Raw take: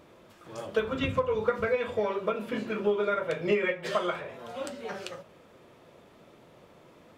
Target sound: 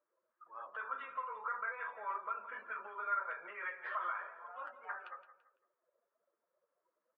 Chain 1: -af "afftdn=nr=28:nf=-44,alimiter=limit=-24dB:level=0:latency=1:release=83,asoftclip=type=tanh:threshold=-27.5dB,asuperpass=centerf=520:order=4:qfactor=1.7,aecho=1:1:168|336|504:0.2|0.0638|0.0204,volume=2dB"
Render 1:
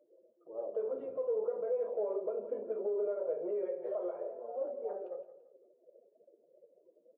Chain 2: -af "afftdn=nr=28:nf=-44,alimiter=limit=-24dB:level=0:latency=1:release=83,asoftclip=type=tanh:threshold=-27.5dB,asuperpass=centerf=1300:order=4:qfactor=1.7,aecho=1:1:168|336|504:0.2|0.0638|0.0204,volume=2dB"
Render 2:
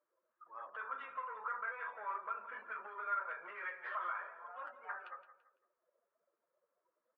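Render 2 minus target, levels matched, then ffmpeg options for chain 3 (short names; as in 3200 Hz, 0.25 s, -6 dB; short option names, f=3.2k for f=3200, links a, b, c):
soft clip: distortion +15 dB
-af "afftdn=nr=28:nf=-44,alimiter=limit=-24dB:level=0:latency=1:release=83,asoftclip=type=tanh:threshold=-18.5dB,asuperpass=centerf=1300:order=4:qfactor=1.7,aecho=1:1:168|336|504:0.2|0.0638|0.0204,volume=2dB"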